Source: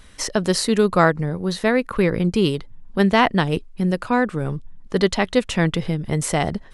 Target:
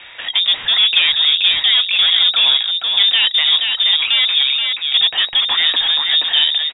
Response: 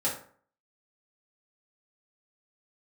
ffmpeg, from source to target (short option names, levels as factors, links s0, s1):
-filter_complex "[0:a]asplit=2[s0][s1];[s1]highpass=f=720:p=1,volume=39.8,asoftclip=type=tanh:threshold=0.794[s2];[s0][s2]amix=inputs=2:normalize=0,lowpass=f=1100:p=1,volume=0.501,aecho=1:1:477:0.596,lowpass=f=3200:t=q:w=0.5098,lowpass=f=3200:t=q:w=0.6013,lowpass=f=3200:t=q:w=0.9,lowpass=f=3200:t=q:w=2.563,afreqshift=-3800,volume=0.668"